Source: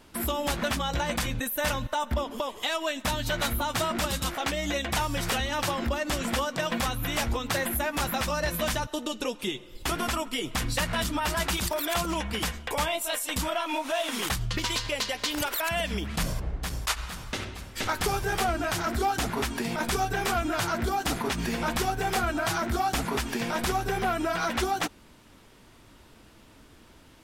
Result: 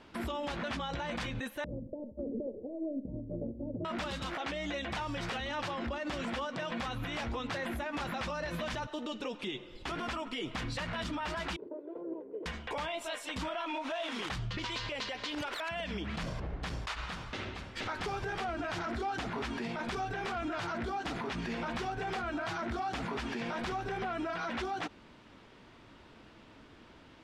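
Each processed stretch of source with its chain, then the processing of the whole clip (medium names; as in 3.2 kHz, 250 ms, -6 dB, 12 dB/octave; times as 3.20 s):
1.64–3.85 s: steep low-pass 520 Hz 48 dB/octave + compressor with a negative ratio -35 dBFS, ratio -0.5 + feedback delay 65 ms, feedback 34%, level -14.5 dB
11.56–12.46 s: comb filter that takes the minimum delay 2 ms + Butterworth band-pass 380 Hz, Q 1.9
whole clip: low-pass 3.8 kHz 12 dB/octave; bass shelf 72 Hz -10 dB; peak limiter -29 dBFS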